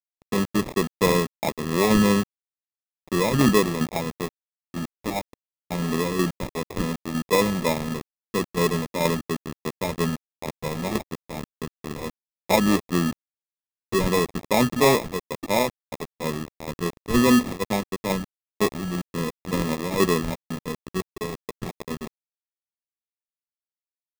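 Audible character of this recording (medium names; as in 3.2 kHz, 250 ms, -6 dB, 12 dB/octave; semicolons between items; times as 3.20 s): tremolo saw down 2.1 Hz, depth 50%; a quantiser's noise floor 6-bit, dither none; phasing stages 4, 2.9 Hz, lowest notch 720–2500 Hz; aliases and images of a low sample rate 1.5 kHz, jitter 0%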